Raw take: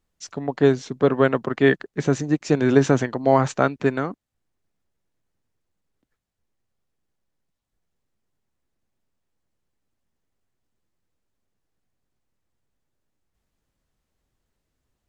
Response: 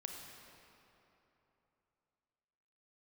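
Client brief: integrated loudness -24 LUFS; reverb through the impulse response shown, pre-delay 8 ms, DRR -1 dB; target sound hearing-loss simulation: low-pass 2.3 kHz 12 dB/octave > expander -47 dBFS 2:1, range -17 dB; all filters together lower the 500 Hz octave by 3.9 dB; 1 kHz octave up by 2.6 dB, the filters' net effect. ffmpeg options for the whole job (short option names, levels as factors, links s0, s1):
-filter_complex "[0:a]equalizer=f=500:t=o:g=-6.5,equalizer=f=1000:t=o:g=6,asplit=2[s0][s1];[1:a]atrim=start_sample=2205,adelay=8[s2];[s1][s2]afir=irnorm=-1:irlink=0,volume=1.41[s3];[s0][s3]amix=inputs=2:normalize=0,lowpass=2300,agate=range=0.141:threshold=0.00447:ratio=2,volume=0.531"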